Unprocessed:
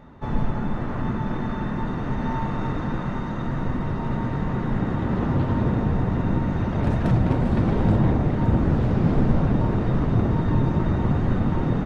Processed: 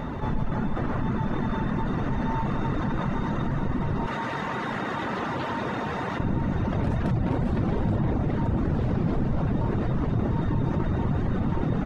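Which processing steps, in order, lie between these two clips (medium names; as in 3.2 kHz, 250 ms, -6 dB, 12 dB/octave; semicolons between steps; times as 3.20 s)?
reverb removal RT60 0.57 s; 4.06–6.20 s: high-pass 1.4 kHz 6 dB/octave; level flattener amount 70%; trim -7 dB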